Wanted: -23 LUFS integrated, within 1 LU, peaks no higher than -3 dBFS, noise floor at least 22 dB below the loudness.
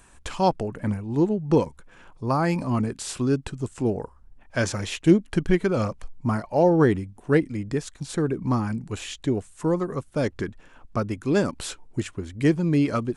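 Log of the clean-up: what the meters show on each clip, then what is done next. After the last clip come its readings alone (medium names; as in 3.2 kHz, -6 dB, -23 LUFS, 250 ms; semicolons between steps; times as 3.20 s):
loudness -25.0 LUFS; peak level -5.5 dBFS; loudness target -23.0 LUFS
-> trim +2 dB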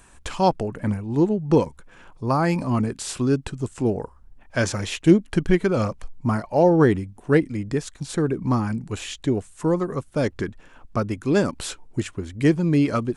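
loudness -23.0 LUFS; peak level -3.5 dBFS; noise floor -51 dBFS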